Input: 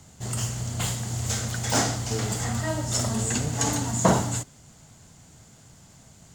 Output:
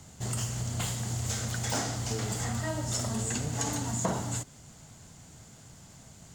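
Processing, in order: compression 3:1, threshold -30 dBFS, peak gain reduction 12 dB

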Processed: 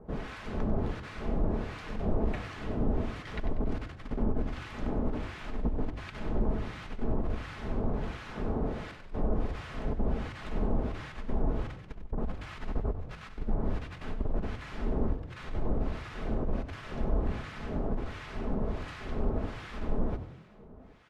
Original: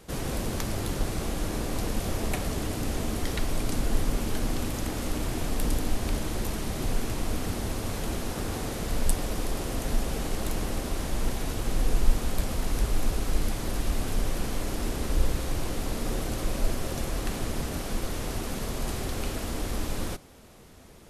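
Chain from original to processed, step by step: low-pass 2.1 kHz 12 dB/octave; comb 4.7 ms, depth 34%; compressor with a negative ratio -25 dBFS, ratio -0.5; harmonic tremolo 1.4 Hz, depth 100%, crossover 1.1 kHz; on a send: frequency-shifting echo 95 ms, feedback 47%, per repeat +37 Hz, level -12 dB

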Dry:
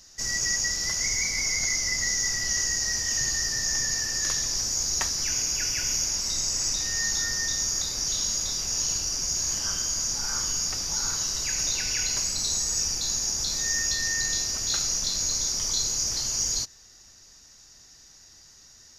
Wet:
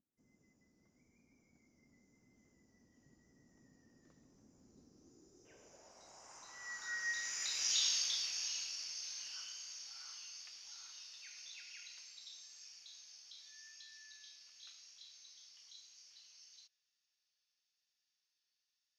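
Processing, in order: Doppler pass-by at 7.76 s, 16 m/s, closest 5.4 m; vibrato 0.96 Hz 22 cents; band-pass sweep 250 Hz -> 2.9 kHz, 4.84–7.66 s; spectral replace 4.78–5.43 s, 410–3600 Hz before; trim +5 dB

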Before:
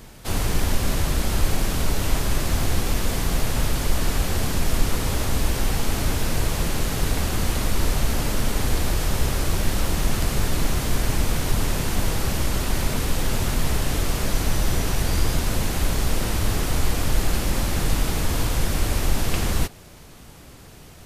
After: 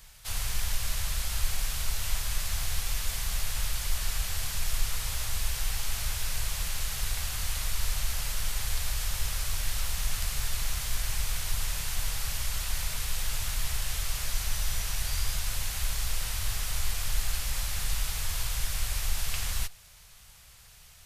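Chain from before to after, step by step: amplifier tone stack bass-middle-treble 10-0-10; trim -2.5 dB

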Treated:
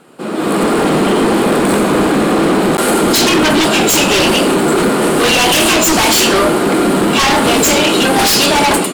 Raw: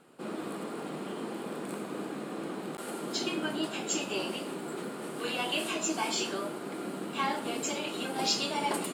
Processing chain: level rider gain up to 14.5 dB; in parallel at -4.5 dB: sine folder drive 16 dB, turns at -2.5 dBFS; on the sum: trim -2.5 dB

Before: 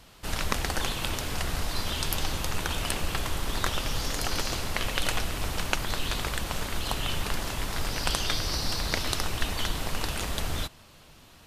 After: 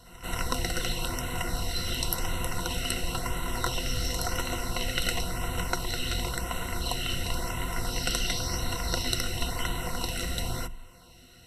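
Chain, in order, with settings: rippled EQ curve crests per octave 2, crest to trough 16 dB; LFO notch sine 0.95 Hz 880–5100 Hz; pre-echo 182 ms -17.5 dB; trim -2.5 dB

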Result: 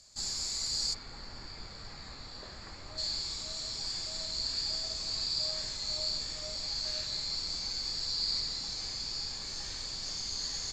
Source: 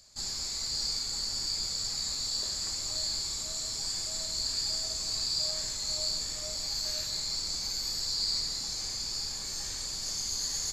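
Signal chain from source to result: Chebyshev low-pass 8.7 kHz, order 2, from 0.93 s 1.9 kHz, from 2.97 s 4.3 kHz

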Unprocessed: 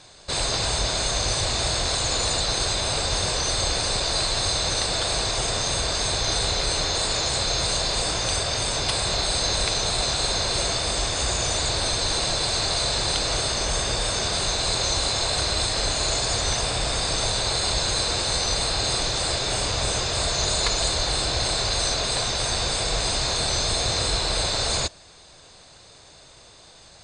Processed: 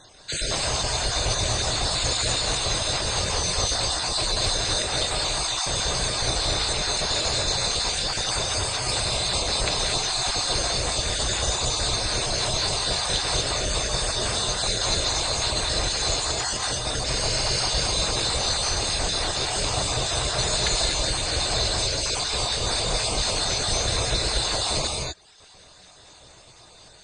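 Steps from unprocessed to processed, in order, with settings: random holes in the spectrogram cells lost 38%; reverb removal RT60 0.86 s; 16.31–16.96 s: compressor with a negative ratio -30 dBFS, ratio -0.5; 17.08–17.61 s: spectral replace 1.5–6.6 kHz after; gated-style reverb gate 270 ms rising, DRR -0.5 dB

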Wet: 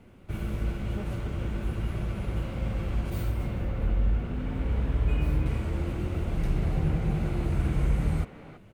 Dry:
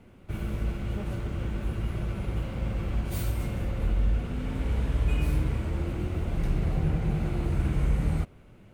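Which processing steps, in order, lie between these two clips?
3.10–5.46 s: peaking EQ 9.7 kHz -9.5 dB 2.3 oct; speakerphone echo 330 ms, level -9 dB

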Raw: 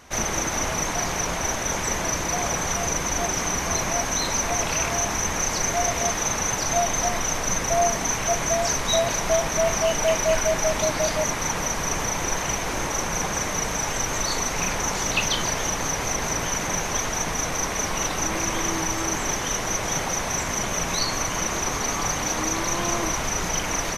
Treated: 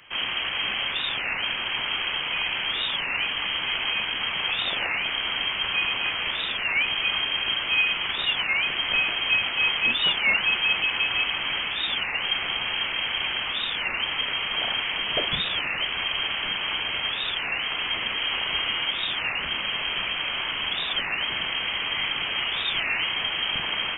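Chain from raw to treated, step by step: tracing distortion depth 0.33 ms; frequency inversion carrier 3.2 kHz; multi-head delay 213 ms, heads second and third, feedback 56%, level -17.5 dB; on a send at -16 dB: reverberation RT60 0.50 s, pre-delay 47 ms; on the sum: warped record 33 1/3 rpm, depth 250 cents; trim -1.5 dB

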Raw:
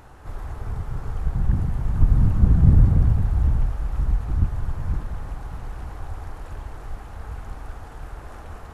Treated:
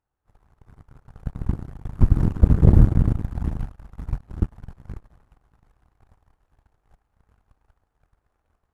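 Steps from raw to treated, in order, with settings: Chebyshev shaper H 7 -17 dB, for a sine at -1 dBFS; trim +1.5 dB

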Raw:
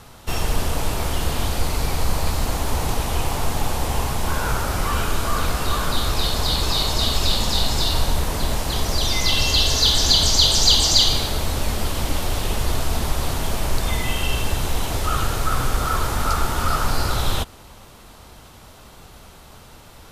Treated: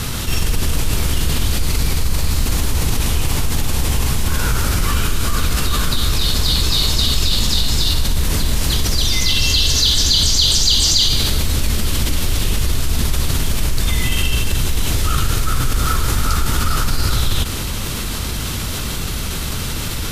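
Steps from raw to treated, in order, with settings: peaking EQ 750 Hz -13 dB 1.6 oct; level flattener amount 70%

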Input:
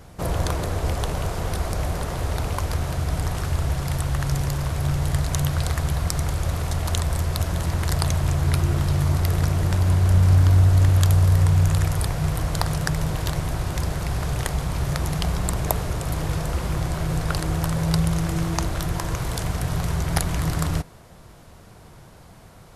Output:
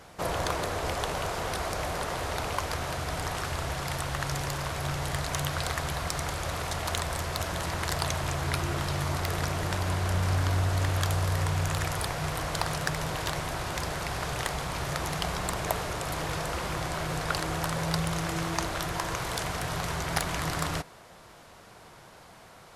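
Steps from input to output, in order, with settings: overdrive pedal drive 16 dB, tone 5.6 kHz, clips at -2 dBFS; trim -8.5 dB

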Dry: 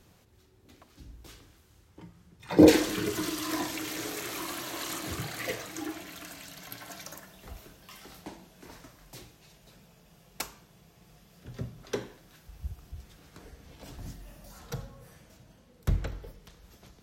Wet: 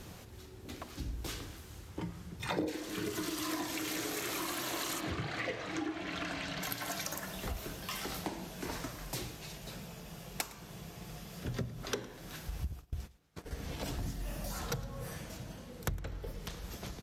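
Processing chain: 5.00–6.63 s: low-pass 3.5 kHz 12 dB/octave; 12.72–13.51 s: gate -47 dBFS, range -29 dB; compression 10:1, threshold -45 dBFS, peak gain reduction 33 dB; delay 110 ms -19.5 dB; trim +11 dB; AAC 96 kbps 32 kHz

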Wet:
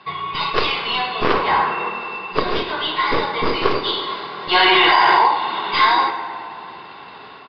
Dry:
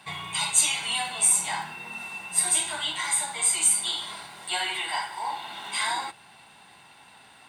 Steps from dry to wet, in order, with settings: tracing distortion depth 0.12 ms; small resonant body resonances 410/1100 Hz, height 13 dB, ringing for 20 ms; 1.33–1.90 s: overdrive pedal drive 19 dB, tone 1.1 kHz, clips at -10 dBFS; level rider gain up to 8.5 dB; resampled via 11.025 kHz; tape echo 107 ms, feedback 80%, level -10.5 dB, low-pass 3.6 kHz; 4.55–5.28 s: level flattener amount 100%; trim +1.5 dB

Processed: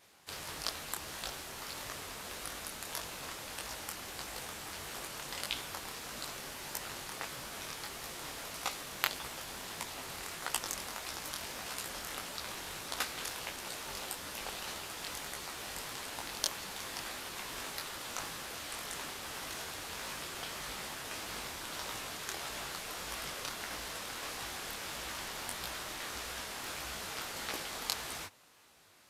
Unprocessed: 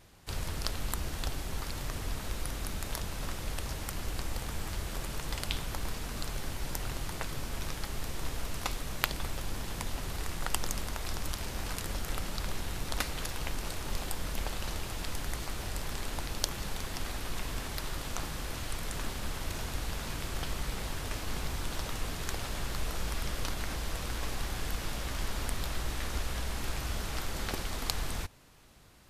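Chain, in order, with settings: high-pass 590 Hz 6 dB/octave; detune thickener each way 56 cents; trim +3.5 dB

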